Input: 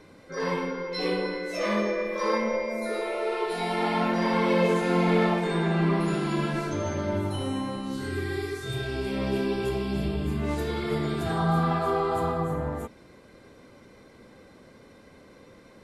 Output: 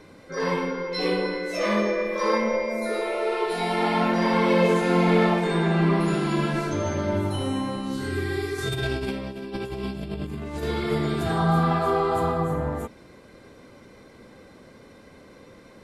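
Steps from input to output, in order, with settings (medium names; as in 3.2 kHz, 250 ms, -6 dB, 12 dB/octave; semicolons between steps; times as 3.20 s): 8.58–10.63 s: compressor with a negative ratio -32 dBFS, ratio -0.5; trim +3 dB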